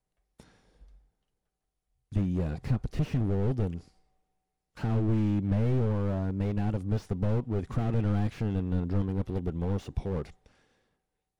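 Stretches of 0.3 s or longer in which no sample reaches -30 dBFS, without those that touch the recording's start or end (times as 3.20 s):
3.77–4.84 s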